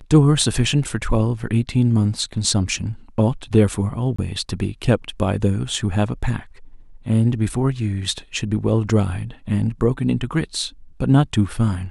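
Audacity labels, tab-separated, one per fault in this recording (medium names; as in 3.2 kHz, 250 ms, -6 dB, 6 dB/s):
4.160000	4.180000	dropout 25 ms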